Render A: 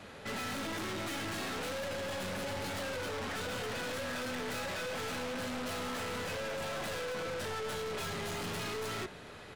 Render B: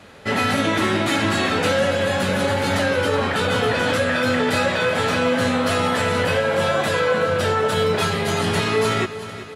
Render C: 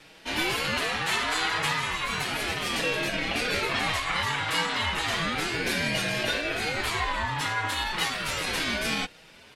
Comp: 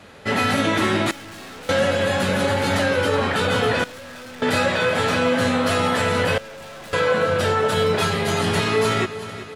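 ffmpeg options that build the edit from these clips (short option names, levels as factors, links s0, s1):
-filter_complex "[0:a]asplit=3[s0][s1][s2];[1:a]asplit=4[s3][s4][s5][s6];[s3]atrim=end=1.112[s7];[s0]atrim=start=1.108:end=1.692[s8];[s4]atrim=start=1.688:end=3.842[s9];[s1]atrim=start=3.838:end=4.422[s10];[s5]atrim=start=4.418:end=6.382[s11];[s2]atrim=start=6.378:end=6.932[s12];[s6]atrim=start=6.928[s13];[s7][s8]acrossfade=d=0.004:c1=hsin:c2=hsin[s14];[s14][s9]acrossfade=d=0.004:c1=hsin:c2=hsin[s15];[s15][s10]acrossfade=d=0.004:c1=hsin:c2=hsin[s16];[s16][s11]acrossfade=d=0.004:c1=hsin:c2=hsin[s17];[s17][s12]acrossfade=d=0.004:c1=hsin:c2=hsin[s18];[s18][s13]acrossfade=d=0.004:c1=hsin:c2=hsin"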